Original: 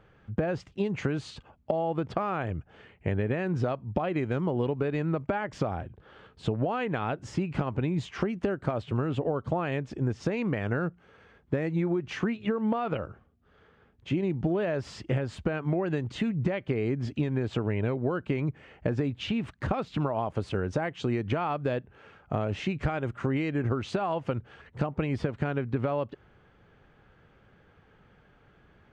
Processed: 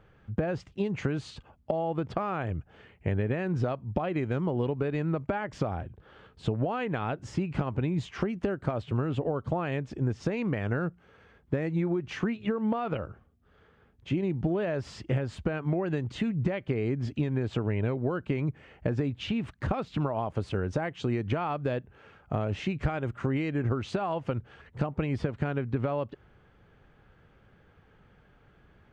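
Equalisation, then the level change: low shelf 110 Hz +4.5 dB; -1.5 dB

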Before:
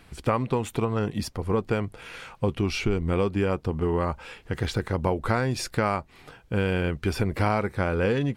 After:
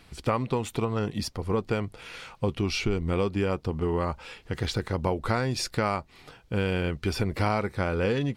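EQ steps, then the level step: bell 4600 Hz +5 dB 1.1 oct; notch 1600 Hz, Q 23; -2.0 dB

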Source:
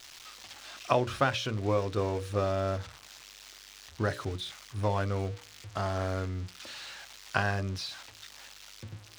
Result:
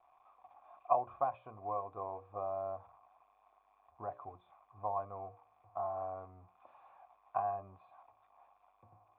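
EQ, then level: vocal tract filter a; +4.5 dB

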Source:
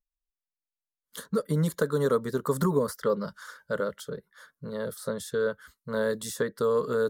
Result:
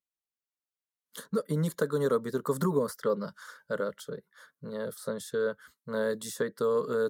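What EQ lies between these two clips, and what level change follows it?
Bessel high-pass 160 Hz; low shelf 390 Hz +3 dB; -3.0 dB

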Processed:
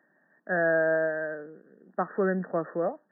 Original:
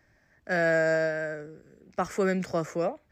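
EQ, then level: brick-wall FIR band-pass 160–1900 Hz; 0.0 dB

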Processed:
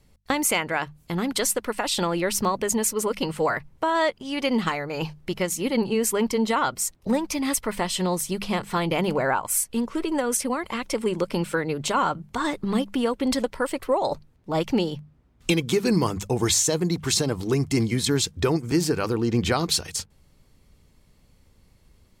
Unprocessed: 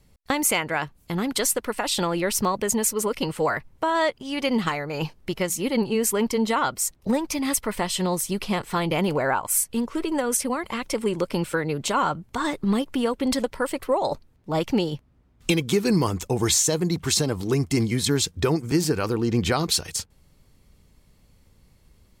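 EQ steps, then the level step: high shelf 12000 Hz -4.5 dB; notches 50/100/150/200 Hz; 0.0 dB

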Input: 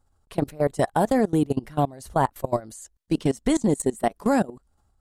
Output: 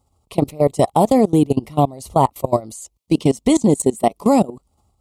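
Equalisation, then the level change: HPF 58 Hz; Butterworth band-stop 1600 Hz, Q 1.8; +7.0 dB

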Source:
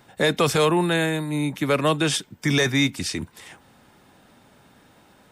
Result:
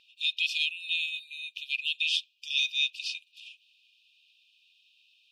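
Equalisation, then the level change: brick-wall FIR high-pass 2400 Hz; air absorption 320 m; +8.0 dB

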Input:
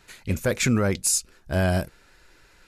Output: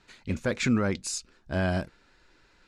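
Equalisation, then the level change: graphic EQ 250/1000/4000/8000 Hz +6/+3/+4/+3 dB; dynamic EQ 1700 Hz, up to +3 dB, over -39 dBFS, Q 0.84; air absorption 84 m; -7.0 dB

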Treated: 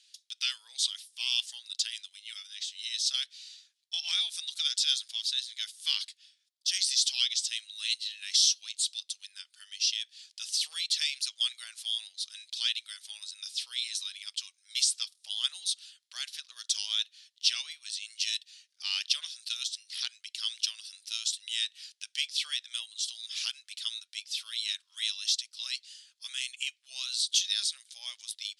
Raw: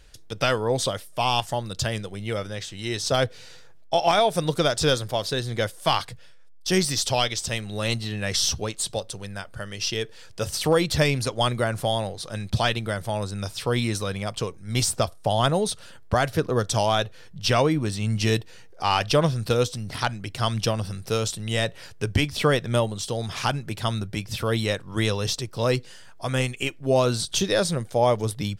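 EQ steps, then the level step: ladder high-pass 2900 Hz, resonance 35%; elliptic low-pass 11000 Hz, stop band 40 dB; high shelf 8700 Hz -4 dB; +6.0 dB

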